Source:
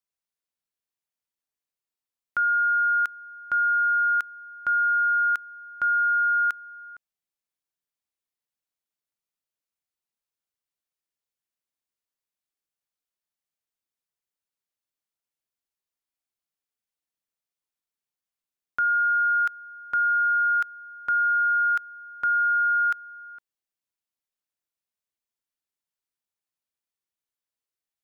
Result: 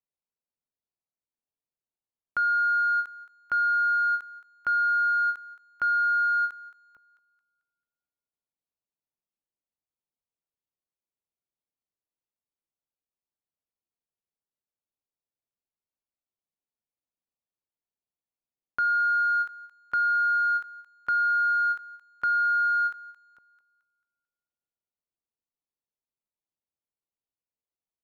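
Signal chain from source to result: local Wiener filter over 25 samples; thinning echo 221 ms, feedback 40%, high-pass 640 Hz, level -18 dB; endings held to a fixed fall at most 260 dB/s

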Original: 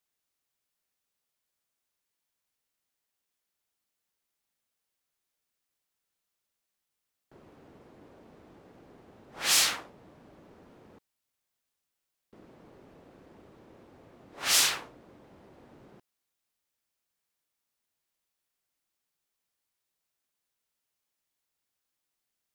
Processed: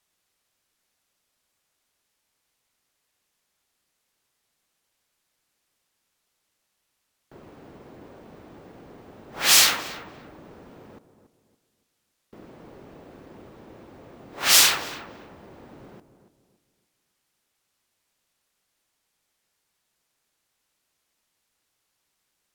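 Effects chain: filtered feedback delay 283 ms, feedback 36%, low-pass 1.2 kHz, level -10.5 dB; careless resampling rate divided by 2×, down none, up hold; trim +8 dB

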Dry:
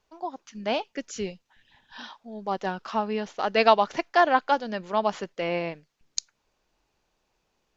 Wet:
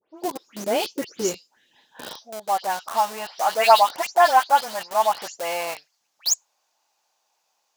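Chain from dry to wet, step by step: delay that grows with frequency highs late, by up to 167 ms; in parallel at -7 dB: Schmitt trigger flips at -34.5 dBFS; on the sum: tone controls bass +11 dB, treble +13 dB; high-pass sweep 390 Hz -> 790 Hz, 1.78–2.60 s; trim -1.5 dB

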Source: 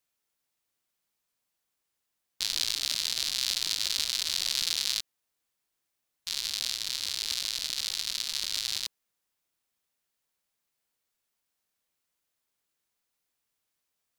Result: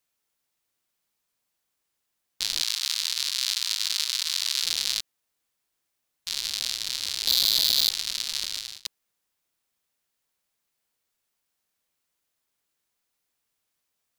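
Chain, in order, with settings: 2.62–4.63 s: steep high-pass 910 Hz 48 dB/octave; 7.27–7.90 s: waveshaping leveller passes 5; 8.41–8.85 s: fade out; trim +2.5 dB

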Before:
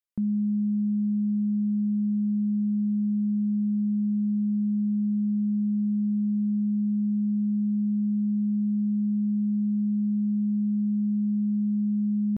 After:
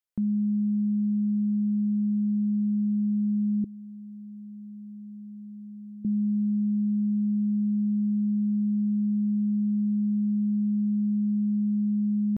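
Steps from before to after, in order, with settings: 3.64–6.05 s: high-pass 330 Hz 24 dB/octave

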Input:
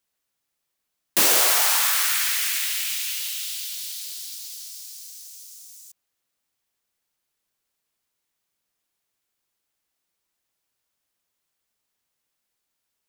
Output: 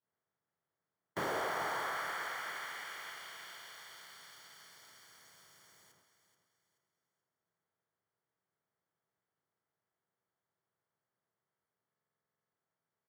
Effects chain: spectral levelling over time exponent 0.6; expander -39 dBFS; Savitzky-Golay filter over 41 samples; feedback comb 660 Hz, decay 0.45 s, mix 60%; saturation -26 dBFS, distortion -20 dB; feedback delay 430 ms, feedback 37%, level -10.5 dB; on a send at -13 dB: reverberation RT60 1.0 s, pre-delay 3 ms; on the sum: buffer glitch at 11.88 s, samples 2048, times 13; trim -2 dB

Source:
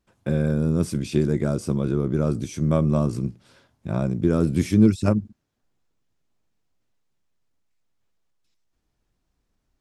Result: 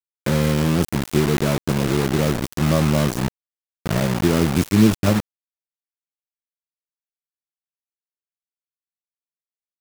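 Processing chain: in parallel at +1.5 dB: compression 5:1, threshold -30 dBFS, peak gain reduction 17.5 dB; on the sum: bit crusher 4-bit

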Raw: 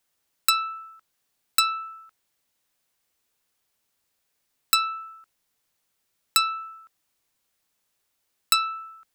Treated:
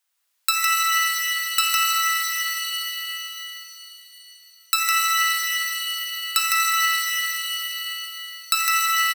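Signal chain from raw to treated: high-pass 920 Hz 12 dB/octave; delay 157 ms -3.5 dB; pitch-shifted reverb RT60 3.5 s, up +7 st, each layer -2 dB, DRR -2.5 dB; trim -1 dB

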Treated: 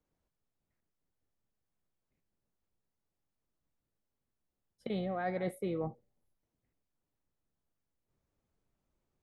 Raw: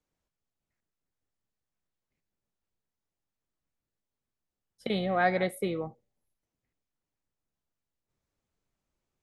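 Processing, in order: tilt shelf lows +4.5 dB, about 1.5 kHz; reverse; compression 10:1, threshold -30 dBFS, peak gain reduction 12.5 dB; reverse; trim -1.5 dB

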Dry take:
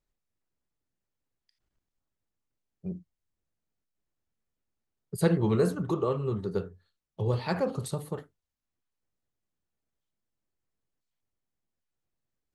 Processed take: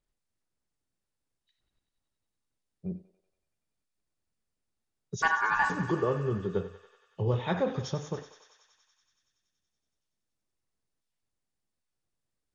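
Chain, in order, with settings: knee-point frequency compression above 2.4 kHz 1.5:1; 5.22–5.70 s: ring modulator 1.3 kHz; thinning echo 94 ms, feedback 81%, high-pass 640 Hz, level -12 dB

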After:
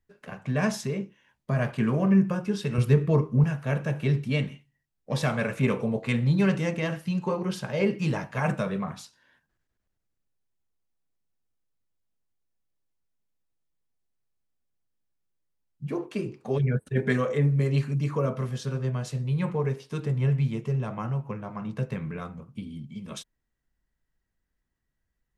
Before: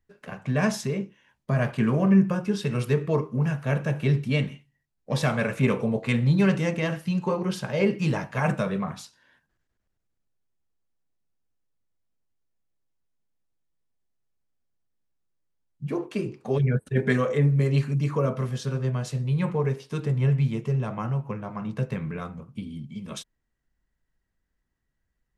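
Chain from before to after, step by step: 2.78–3.44 s: bass shelf 190 Hz +11 dB; trim -2 dB

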